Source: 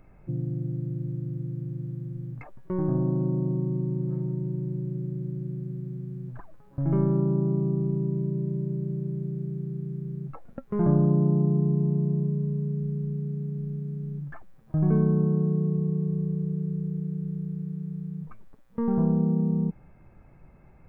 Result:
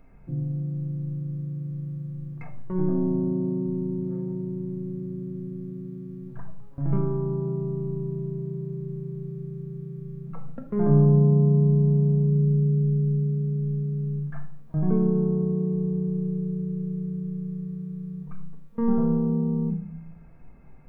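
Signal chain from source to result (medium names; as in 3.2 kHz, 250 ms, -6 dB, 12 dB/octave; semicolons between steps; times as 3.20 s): simulated room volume 870 m³, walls furnished, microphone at 1.7 m; trim -2 dB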